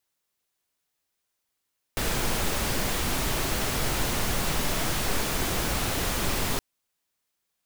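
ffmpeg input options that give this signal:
-f lavfi -i "anoisesrc=c=pink:a=0.243:d=4.62:r=44100:seed=1"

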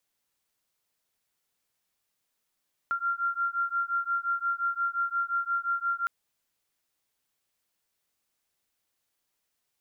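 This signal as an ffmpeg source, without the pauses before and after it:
-f lavfi -i "aevalsrc='0.0335*(sin(2*PI*1380*t)+sin(2*PI*1385.7*t))':d=3.16:s=44100"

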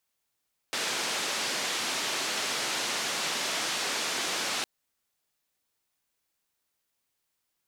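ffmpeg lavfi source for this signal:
-f lavfi -i "anoisesrc=c=white:d=3.91:r=44100:seed=1,highpass=f=230,lowpass=f=5700,volume=-20.4dB"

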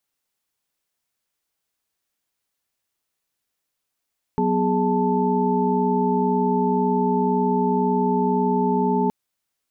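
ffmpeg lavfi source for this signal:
-f lavfi -i "aevalsrc='0.0708*(sin(2*PI*185*t)+sin(2*PI*246.94*t)+sin(2*PI*415.3*t)+sin(2*PI*880*t))':d=4.72:s=44100"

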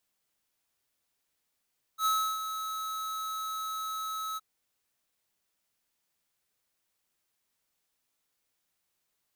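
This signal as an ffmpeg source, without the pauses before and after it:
-f lavfi -i "aevalsrc='0.0501*(2*lt(mod(1290*t,1),0.5)-1)':d=2.418:s=44100,afade=t=in:d=0.077,afade=t=out:st=0.077:d=0.322:silence=0.335,afade=t=out:st=2.39:d=0.028"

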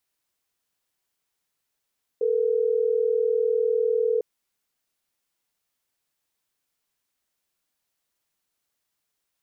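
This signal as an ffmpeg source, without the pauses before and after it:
-f lavfi -i "aevalsrc='0.075*(sin(2*PI*440*t)+sin(2*PI*480*t))*clip(min(mod(t,6),2-mod(t,6))/0.005,0,1)':d=3.12:s=44100"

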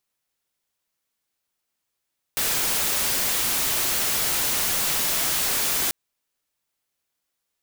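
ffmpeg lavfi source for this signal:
-f lavfi -i "anoisesrc=c=white:a=0.116:d=3.54:r=44100:seed=1"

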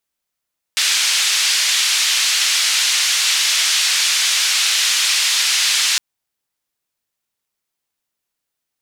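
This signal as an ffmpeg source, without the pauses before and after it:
-f lavfi -i "anoisesrc=c=white:d=5.21:r=44100:seed=1,highpass=f=2300,lowpass=f=5600,volume=-3.7dB"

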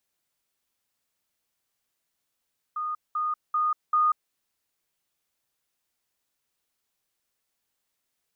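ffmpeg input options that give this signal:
-f lavfi -i "aevalsrc='pow(10,(-27.5+3*floor(t/0.39))/20)*sin(2*PI*1230*t)*clip(min(mod(t,0.39),0.19-mod(t,0.39))/0.005,0,1)':d=1.56:s=44100"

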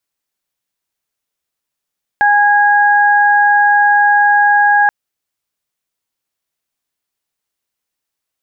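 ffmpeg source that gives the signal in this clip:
-f lavfi -i "aevalsrc='0.335*sin(2*PI*823*t)+0.299*sin(2*PI*1646*t)':d=2.68:s=44100"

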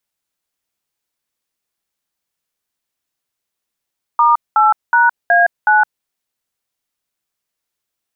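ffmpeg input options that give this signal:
-f lavfi -i "aevalsrc='0.299*clip(min(mod(t,0.37),0.165-mod(t,0.37))/0.002,0,1)*(eq(floor(t/0.37),0)*(sin(2*PI*941*mod(t,0.37))+sin(2*PI*1209*mod(t,0.37)))+eq(floor(t/0.37),1)*(sin(2*PI*852*mod(t,0.37))+sin(2*PI*1336*mod(t,0.37)))+eq(floor(t/0.37),2)*(sin(2*PI*941*mod(t,0.37))+sin(2*PI*1477*mod(t,0.37)))+eq(floor(t/0.37),3)*(sin(2*PI*697*mod(t,0.37))+sin(2*PI*1633*mod(t,0.37)))+eq(floor(t/0.37),4)*(sin(2*PI*852*mod(t,0.37))+sin(2*PI*1477*mod(t,0.37))))':d=1.85:s=44100"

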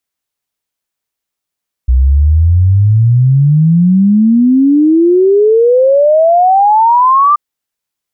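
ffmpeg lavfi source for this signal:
-f lavfi -i "aevalsrc='0.596*clip(min(t,5.48-t)/0.01,0,1)*sin(2*PI*61*5.48/log(1200/61)*(exp(log(1200/61)*t/5.48)-1))':d=5.48:s=44100"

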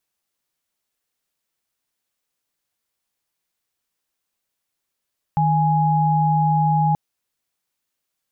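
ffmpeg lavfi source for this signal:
-f lavfi -i "aevalsrc='0.133*(sin(2*PI*155.56*t)+sin(2*PI*830.61*t))':d=1.58:s=44100"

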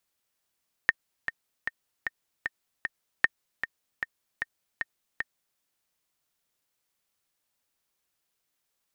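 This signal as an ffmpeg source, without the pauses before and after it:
-f lavfi -i "aevalsrc='pow(10,(-6-10*gte(mod(t,6*60/153),60/153))/20)*sin(2*PI*1830*mod(t,60/153))*exp(-6.91*mod(t,60/153)/0.03)':d=4.7:s=44100"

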